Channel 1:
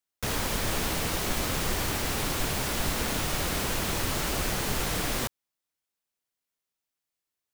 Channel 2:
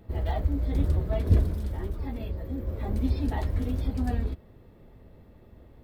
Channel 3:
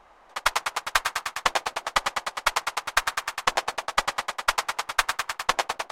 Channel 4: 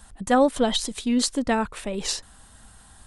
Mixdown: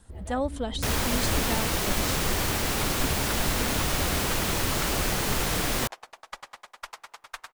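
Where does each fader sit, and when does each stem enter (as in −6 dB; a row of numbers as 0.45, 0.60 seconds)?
+2.5, −10.5, −17.0, −10.0 decibels; 0.60, 0.00, 2.35, 0.00 seconds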